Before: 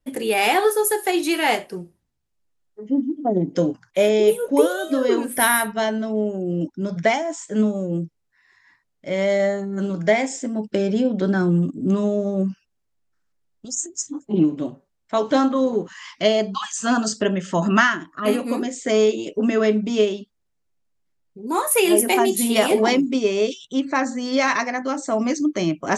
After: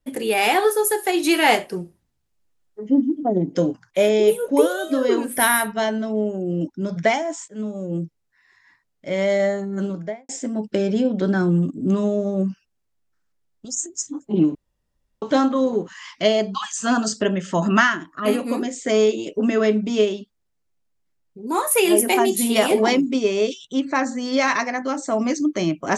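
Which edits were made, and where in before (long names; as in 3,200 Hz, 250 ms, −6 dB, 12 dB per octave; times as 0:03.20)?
0:01.24–0:03.23: clip gain +3.5 dB
0:07.48–0:08.04: fade in linear, from −19 dB
0:09.76–0:10.29: fade out and dull
0:14.55–0:15.22: fill with room tone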